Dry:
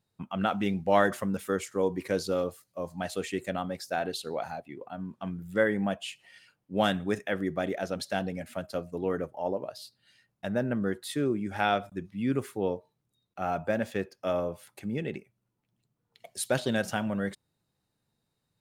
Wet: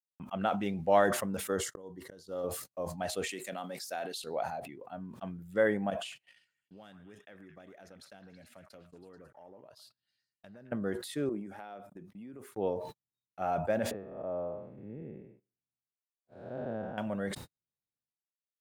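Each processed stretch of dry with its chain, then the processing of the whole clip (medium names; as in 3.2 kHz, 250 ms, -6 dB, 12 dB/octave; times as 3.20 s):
1.51–2.44 s: gate -47 dBFS, range -45 dB + slow attack 570 ms + Butterworth band-stop 2.4 kHz, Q 3.6
3.29–4.24 s: high-pass 170 Hz 24 dB/octave + treble shelf 2 kHz +11 dB + compression 2:1, threshold -36 dBFS
5.90–10.72 s: compression, threshold -44 dBFS + repeats whose band climbs or falls 110 ms, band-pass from 1.3 kHz, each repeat 0.7 oct, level -6 dB
11.29–12.52 s: high-pass 190 Hz + peaking EQ 4 kHz -8.5 dB 2.6 oct + compression 12:1, threshold -37 dBFS
13.91–16.98 s: spectral blur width 333 ms + low-pass 1.1 kHz
whole clip: gate -49 dBFS, range -56 dB; dynamic bell 660 Hz, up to +6 dB, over -42 dBFS, Q 1.1; decay stretcher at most 71 dB/s; trim -6.5 dB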